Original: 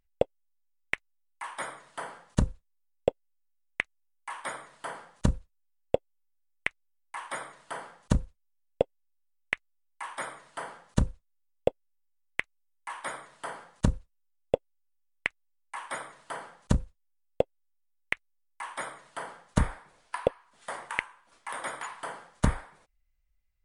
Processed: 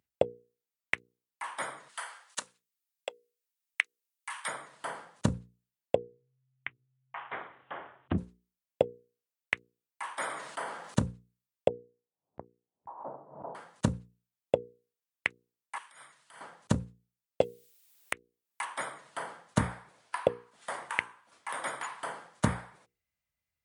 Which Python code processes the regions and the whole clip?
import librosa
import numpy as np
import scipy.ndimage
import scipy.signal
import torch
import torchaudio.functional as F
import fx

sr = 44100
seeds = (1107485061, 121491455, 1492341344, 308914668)

y = fx.chain(x, sr, fx.highpass(hz=1200.0, slope=12),
    fx.high_shelf(hz=2500.0, db=6.0), at=(1.89, 4.48))
y = fx.chain(y, sr, fx.steep_lowpass(hz=3300.0, slope=72),
    fx.ring_mod(carrier_hz=130.0), at=(5.95, 8.18))
y = fx.chain(y, sr, fx.highpass(hz=190.0, slope=12),
    fx.sustainer(db_per_s=49.0), at=(10.14, 10.98))
y = fx.chain(y, sr, fx.steep_lowpass(hz=890.0, slope=36),
    fx.pre_swell(db_per_s=94.0), at=(11.68, 13.55))
y = fx.chain(y, sr, fx.tone_stack(knobs='5-5-5'),
    fx.over_compress(threshold_db=-53.0, ratio=-1.0), at=(15.78, 16.41))
y = fx.chain(y, sr, fx.peak_eq(hz=5300.0, db=-2.5, octaves=1.0),
    fx.band_squash(depth_pct=100), at=(17.41, 18.65))
y = scipy.signal.sosfilt(scipy.signal.butter(4, 88.0, 'highpass', fs=sr, output='sos'), y)
y = fx.hum_notches(y, sr, base_hz=60, count=8)